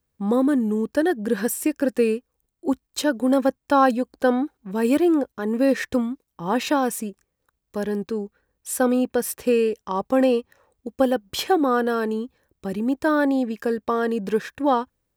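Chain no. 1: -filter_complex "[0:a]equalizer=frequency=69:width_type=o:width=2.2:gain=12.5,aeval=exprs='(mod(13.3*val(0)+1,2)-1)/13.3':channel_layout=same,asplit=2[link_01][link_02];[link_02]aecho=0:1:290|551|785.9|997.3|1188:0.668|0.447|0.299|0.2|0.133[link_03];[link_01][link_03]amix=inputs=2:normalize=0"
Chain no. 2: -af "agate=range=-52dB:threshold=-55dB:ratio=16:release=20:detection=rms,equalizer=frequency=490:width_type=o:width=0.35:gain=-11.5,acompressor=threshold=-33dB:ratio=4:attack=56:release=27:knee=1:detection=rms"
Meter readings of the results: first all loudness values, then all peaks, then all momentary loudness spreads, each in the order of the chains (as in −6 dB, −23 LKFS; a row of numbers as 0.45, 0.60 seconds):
−25.5, −31.5 LKFS; −14.5, −17.0 dBFS; 4, 6 LU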